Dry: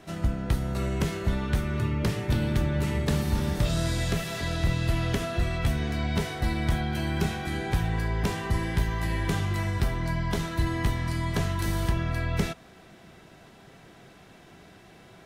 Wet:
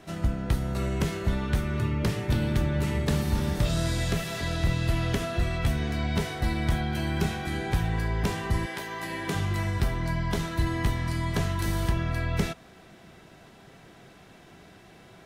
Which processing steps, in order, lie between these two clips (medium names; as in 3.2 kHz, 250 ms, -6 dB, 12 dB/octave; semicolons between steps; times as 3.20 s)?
8.65–9.34 s: high-pass 460 Hz -> 180 Hz 12 dB/octave